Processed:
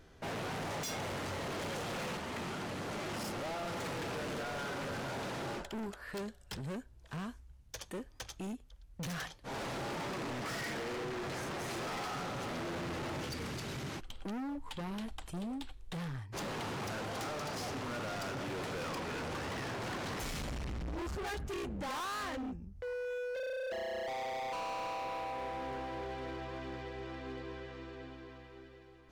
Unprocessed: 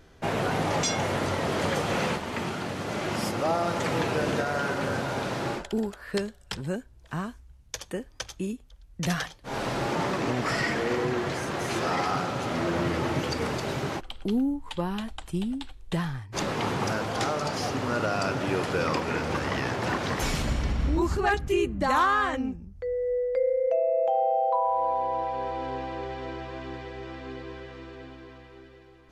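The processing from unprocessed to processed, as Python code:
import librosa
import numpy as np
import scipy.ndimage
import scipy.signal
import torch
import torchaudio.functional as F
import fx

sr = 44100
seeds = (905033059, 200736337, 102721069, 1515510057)

y = fx.peak_eq(x, sr, hz=690.0, db=-9.0, octaves=2.1, at=(13.25, 14.13))
y = np.clip(y, -10.0 ** (-33.0 / 20.0), 10.0 ** (-33.0 / 20.0))
y = F.gain(torch.from_numpy(y), -4.5).numpy()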